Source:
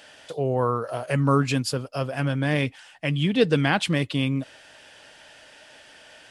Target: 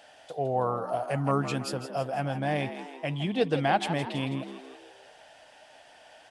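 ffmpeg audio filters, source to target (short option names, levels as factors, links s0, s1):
-filter_complex "[0:a]equalizer=f=730:w=2.7:g=13,asplit=2[s0][s1];[s1]asplit=6[s2][s3][s4][s5][s6][s7];[s2]adelay=163,afreqshift=64,volume=0.282[s8];[s3]adelay=326,afreqshift=128,volume=0.151[s9];[s4]adelay=489,afreqshift=192,volume=0.0822[s10];[s5]adelay=652,afreqshift=256,volume=0.0442[s11];[s6]adelay=815,afreqshift=320,volume=0.024[s12];[s7]adelay=978,afreqshift=384,volume=0.0129[s13];[s8][s9][s10][s11][s12][s13]amix=inputs=6:normalize=0[s14];[s0][s14]amix=inputs=2:normalize=0,volume=0.398"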